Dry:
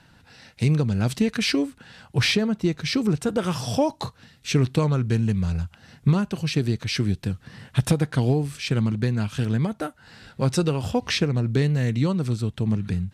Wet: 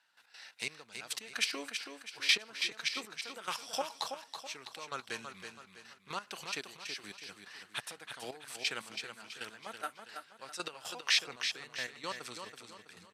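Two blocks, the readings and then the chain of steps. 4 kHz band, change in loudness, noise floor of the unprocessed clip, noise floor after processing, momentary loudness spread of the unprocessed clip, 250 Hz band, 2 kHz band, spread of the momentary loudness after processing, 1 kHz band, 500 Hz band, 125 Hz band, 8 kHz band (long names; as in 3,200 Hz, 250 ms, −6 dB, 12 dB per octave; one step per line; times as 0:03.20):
−4.5 dB, −13.0 dB, −56 dBFS, −63 dBFS, 7 LU, −29.5 dB, −5.0 dB, 19 LU, −8.5 dB, −19.5 dB, −40.0 dB, −5.5 dB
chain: high-pass filter 1,000 Hz 12 dB per octave
gate pattern "..x.xx.x.....x" 177 BPM −12 dB
on a send: repeating echo 327 ms, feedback 40%, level −7 dB
on the sum: level −2 dB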